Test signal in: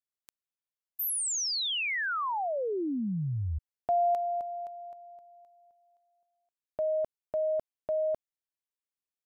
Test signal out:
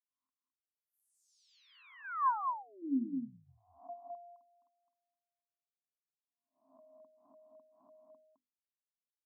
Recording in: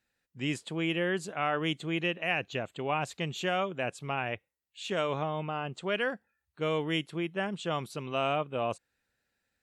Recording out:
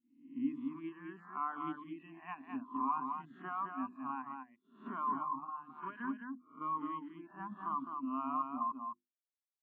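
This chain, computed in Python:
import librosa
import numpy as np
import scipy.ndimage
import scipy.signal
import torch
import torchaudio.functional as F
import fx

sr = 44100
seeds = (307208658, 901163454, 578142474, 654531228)

p1 = fx.spec_swells(x, sr, rise_s=0.8)
p2 = fx.double_bandpass(p1, sr, hz=520.0, octaves=2.0)
p3 = fx.dereverb_blind(p2, sr, rt60_s=1.4)
p4 = fx.level_steps(p3, sr, step_db=23)
p5 = p3 + (p4 * 10.0 ** (-1.0 / 20.0))
p6 = fx.hum_notches(p5, sr, base_hz=50, count=7)
p7 = p6 + fx.echo_single(p6, sr, ms=211, db=-3.5, dry=0)
p8 = fx.spectral_expand(p7, sr, expansion=1.5)
y = p8 * 10.0 ** (1.5 / 20.0)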